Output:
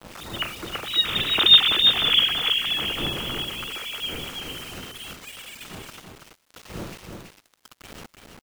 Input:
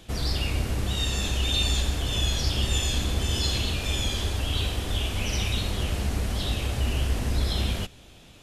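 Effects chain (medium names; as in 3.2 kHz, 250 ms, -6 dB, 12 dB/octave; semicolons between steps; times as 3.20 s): formants replaced by sine waves; wind noise 380 Hz -31 dBFS; Doppler pass-by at 1.81 s, 13 m/s, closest 7.2 m; peaking EQ 1.3 kHz +8 dB 0.45 oct; bit crusher 7-bit; delay 331 ms -5 dB; crackle 530 per s -55 dBFS; trim +2 dB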